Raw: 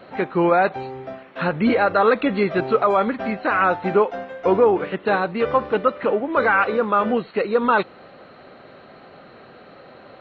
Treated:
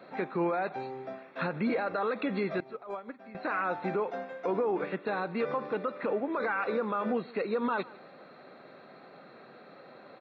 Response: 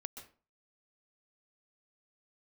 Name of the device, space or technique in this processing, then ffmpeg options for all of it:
PA system with an anti-feedback notch: -filter_complex "[0:a]highpass=f=140:w=0.5412,highpass=f=140:w=1.3066,asuperstop=centerf=3000:order=4:qfactor=7.5,alimiter=limit=-15dB:level=0:latency=1:release=68,asettb=1/sr,asplit=3[a][b][c];[a]atrim=end=2.604[d];[b]atrim=start=2.6:end=3.35,asetpts=PTS-STARTPTS,afade=t=in:d=0.004:c=qsin,afade=t=out:st=0.746:d=0.004:c=qsin,agate=range=-17dB:threshold=-20dB:ratio=16:detection=peak[e];[c]atrim=start=3.346[f];[d][e]acrossfade=d=0.004:c1=hsin:c2=qsin[g];[g][f]acrossfade=d=0.004:c1=qsin:c2=hsin,aecho=1:1:150:0.0841,volume=-7dB"

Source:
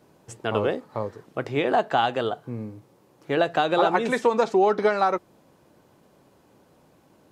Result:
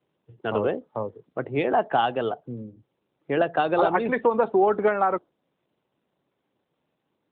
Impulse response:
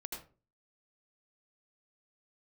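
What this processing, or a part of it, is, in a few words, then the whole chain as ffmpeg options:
mobile call with aggressive noise cancelling: -filter_complex "[0:a]asplit=3[a][b][c];[a]afade=t=out:st=0.87:d=0.02[d];[b]highpass=54,afade=t=in:st=0.87:d=0.02,afade=t=out:st=1.57:d=0.02[e];[c]afade=t=in:st=1.57:d=0.02[f];[d][e][f]amix=inputs=3:normalize=0,highpass=f=100:w=0.5412,highpass=f=100:w=1.3066,afftdn=nr=17:nf=-36" -ar 8000 -c:a libopencore_amrnb -b:a 12200

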